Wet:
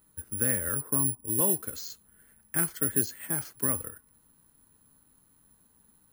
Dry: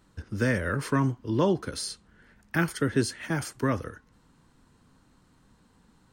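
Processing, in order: 0.78–1.27 LPF 1100 Hz 24 dB/oct; careless resampling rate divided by 4×, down filtered, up zero stuff; gain -8 dB

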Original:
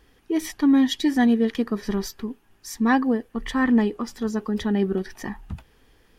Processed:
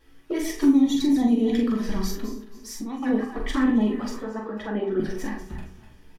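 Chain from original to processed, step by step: regenerating reverse delay 0.136 s, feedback 52%, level -10.5 dB; vibrato 11 Hz 49 cents; envelope flanger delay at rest 11.9 ms, full sweep at -16.5 dBFS; 4.16–5 three-band isolator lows -14 dB, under 290 Hz, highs -16 dB, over 2600 Hz; limiter -17.5 dBFS, peak gain reduction 8 dB; 0.75–1.31 bell 3000 Hz -14.5 dB 0.26 oct; 2.27–3.03 compressor 2.5:1, threshold -38 dBFS, peak gain reduction 11.5 dB; doubler 43 ms -5 dB; on a send: reverb RT60 0.35 s, pre-delay 3 ms, DRR 2 dB

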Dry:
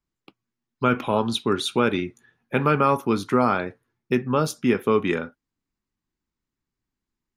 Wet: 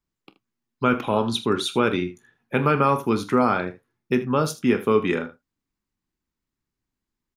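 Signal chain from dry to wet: early reflections 28 ms -16.5 dB, 44 ms -16.5 dB, 78 ms -15.5 dB

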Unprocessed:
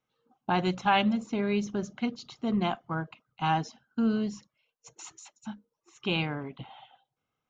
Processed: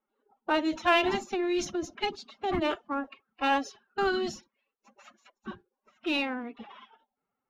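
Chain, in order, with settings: low-pass opened by the level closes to 1400 Hz, open at -25.5 dBFS; low shelf 220 Hz -7 dB; in parallel at -9 dB: hard clip -26.5 dBFS, distortion -9 dB; on the sum: formant-preserving pitch shift +9.5 st

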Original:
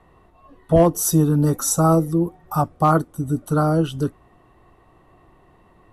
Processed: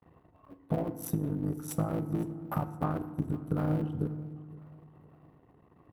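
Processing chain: cycle switcher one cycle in 3, muted; HPF 93 Hz; gate with hold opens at -49 dBFS; EQ curve 160 Hz 0 dB, 2800 Hz -10 dB, 6800 Hz -21 dB, 13000 Hz -9 dB; limiter -18 dBFS, peak gain reduction 10 dB; compressor 1.5:1, threshold -36 dBFS, peak gain reduction 5.5 dB; transient shaper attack +6 dB, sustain -9 dB; feedback echo 0.512 s, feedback 49%, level -22 dB; FDN reverb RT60 1.3 s, low-frequency decay 1.55×, high-frequency decay 0.45×, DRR 11 dB; gain -3 dB

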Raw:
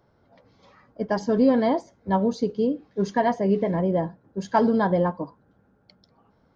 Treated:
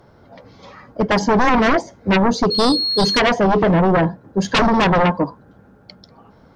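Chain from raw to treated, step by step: 2.5–3.18 whine 4300 Hz -31 dBFS; sine folder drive 13 dB, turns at -8 dBFS; gain -3 dB

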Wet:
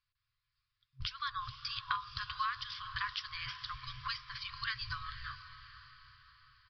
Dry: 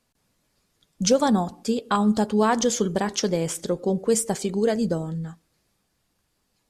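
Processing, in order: gate with hold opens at -37 dBFS; FFT band-reject 130–1000 Hz; compressor 6:1, threshold -43 dBFS, peak gain reduction 22 dB; diffused feedback echo 0.479 s, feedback 51%, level -12 dB; downsampling 11025 Hz; gain +8.5 dB

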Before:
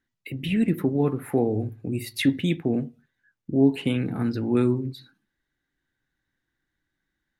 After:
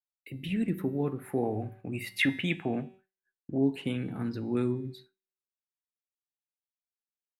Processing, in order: 1.43–3.58 band shelf 1400 Hz +11 dB 2.5 oct; resonator 190 Hz, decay 0.96 s, mix 60%; expander -46 dBFS

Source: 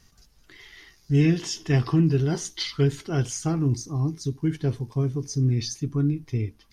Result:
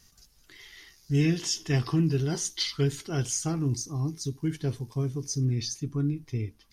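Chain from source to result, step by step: high shelf 4000 Hz +10 dB, from 5.45 s +5 dB; gain -4.5 dB

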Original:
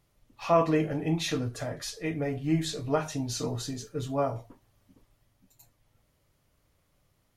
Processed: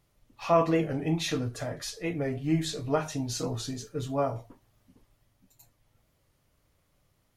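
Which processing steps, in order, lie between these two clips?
record warp 45 rpm, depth 100 cents

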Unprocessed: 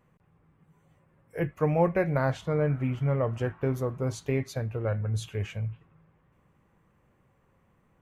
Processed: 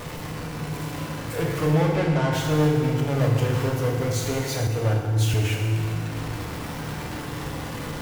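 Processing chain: zero-crossing step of -33.5 dBFS; sample leveller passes 3; 1.72–2.32 air absorption 62 m; FDN reverb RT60 1.9 s, low-frequency decay 1.2×, high-frequency decay 0.85×, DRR -1.5 dB; 4.67–5.34 three-band expander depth 70%; gain -8.5 dB

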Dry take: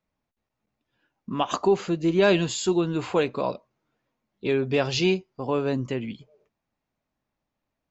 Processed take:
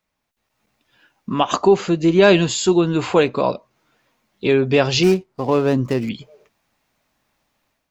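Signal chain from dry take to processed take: 5.03–6.09 median filter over 15 samples; AGC gain up to 9 dB; mismatched tape noise reduction encoder only

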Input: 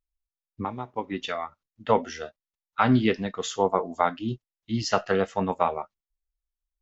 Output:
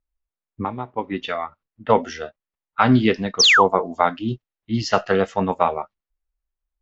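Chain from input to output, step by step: painted sound fall, 3.39–3.64, 780–6600 Hz -18 dBFS; low-pass opened by the level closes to 1800 Hz, open at -18.5 dBFS; gain +5 dB

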